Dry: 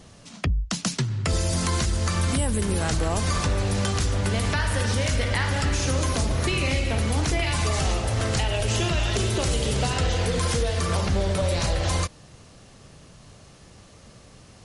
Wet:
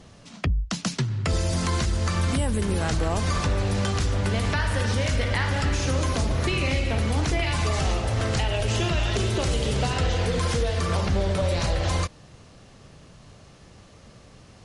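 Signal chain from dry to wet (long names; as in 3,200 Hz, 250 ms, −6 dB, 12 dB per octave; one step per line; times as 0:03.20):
high-shelf EQ 8,700 Hz −11.5 dB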